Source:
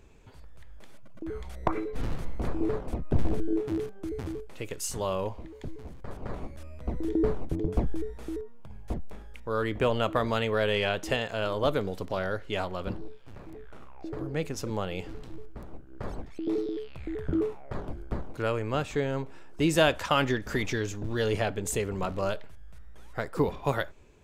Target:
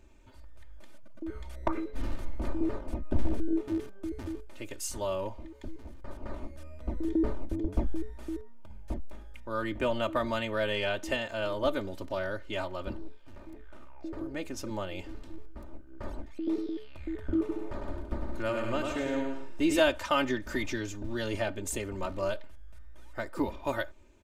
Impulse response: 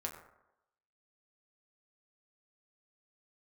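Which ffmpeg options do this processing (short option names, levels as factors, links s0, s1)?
-filter_complex "[0:a]aecho=1:1:3.3:0.79,asettb=1/sr,asplit=3[s0][s1][s2];[s0]atrim=end=17.394[s3];[s1]atrim=start=17.39:end=19.8,asetpts=PTS-STARTPTS,afade=t=in:d=0.004:c=qsin,afade=t=out:st=2.406:d=0.004:c=qsin,aecho=1:1:100|170|219|253.3|277.3:0.631|0.398|0.251|0.158|0.1,atrim=end_sample=106281[s4];[s2]atrim=start=19.796[s5];[s3][s4]acrossfade=d=0.004:c1=hsin:c2=qsin[s6];[s6][s5]acrossfade=d=0.004:c1=qsin:c2=hsin,volume=0.562"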